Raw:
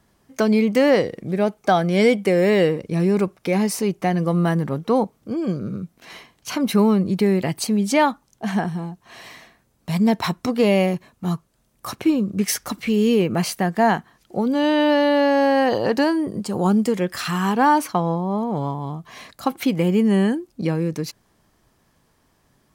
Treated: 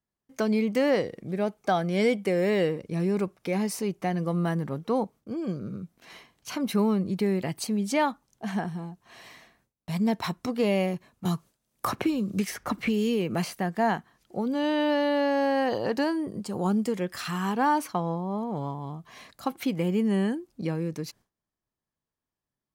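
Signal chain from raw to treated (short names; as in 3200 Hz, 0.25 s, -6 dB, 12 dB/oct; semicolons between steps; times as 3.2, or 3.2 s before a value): gate with hold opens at -48 dBFS; 11.25–13.54 three-band squash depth 100%; gain -7.5 dB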